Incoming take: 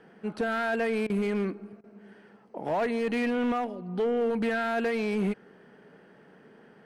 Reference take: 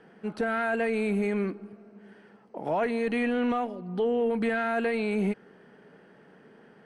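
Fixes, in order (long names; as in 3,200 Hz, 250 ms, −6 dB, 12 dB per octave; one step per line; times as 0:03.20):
clipped peaks rebuilt −22.5 dBFS
repair the gap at 0:01.07/0:01.81, 27 ms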